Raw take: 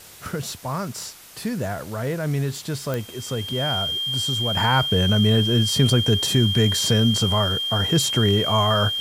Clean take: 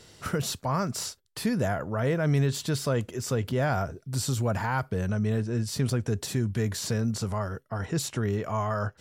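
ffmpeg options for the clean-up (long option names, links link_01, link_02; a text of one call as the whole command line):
ffmpeg -i in.wav -af "adeclick=threshold=4,bandreject=frequency=3200:width=30,afwtdn=0.0063,asetnsamples=nb_out_samples=441:pad=0,asendcmd='4.57 volume volume -8.5dB',volume=0dB" out.wav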